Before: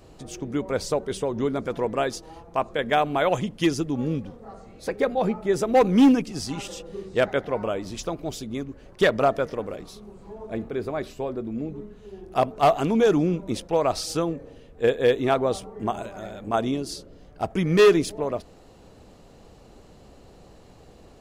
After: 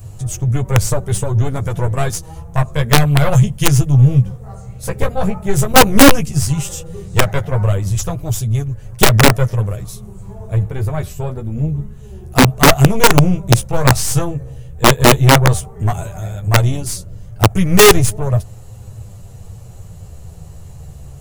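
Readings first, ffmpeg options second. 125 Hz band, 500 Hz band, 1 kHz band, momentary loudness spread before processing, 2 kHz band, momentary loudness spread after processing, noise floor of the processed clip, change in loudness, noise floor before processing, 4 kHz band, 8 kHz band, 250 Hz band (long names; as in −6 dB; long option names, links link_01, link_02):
+20.5 dB, +4.5 dB, +9.0 dB, 16 LU, +13.0 dB, 16 LU, −35 dBFS, +10.0 dB, −50 dBFS, +15.0 dB, +19.5 dB, +7.0 dB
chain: -af "aexciter=amount=4.1:drive=6.6:freq=6400,aeval=exprs='0.447*(cos(1*acos(clip(val(0)/0.447,-1,1)))-cos(1*PI/2))+0.00794*(cos(2*acos(clip(val(0)/0.447,-1,1)))-cos(2*PI/2))+0.0224*(cos(3*acos(clip(val(0)/0.447,-1,1)))-cos(3*PI/2))+0.0891*(cos(4*acos(clip(val(0)/0.447,-1,1)))-cos(4*PI/2))+0.0282*(cos(5*acos(clip(val(0)/0.447,-1,1)))-cos(5*PI/2))':channel_layout=same,lowshelf=frequency=180:width_type=q:width=3:gain=12.5,flanger=delay=9.5:depth=5.8:regen=-3:speed=0.11:shape=sinusoidal,aeval=exprs='(mod(2.24*val(0)+1,2)-1)/2.24':channel_layout=same,volume=6dB"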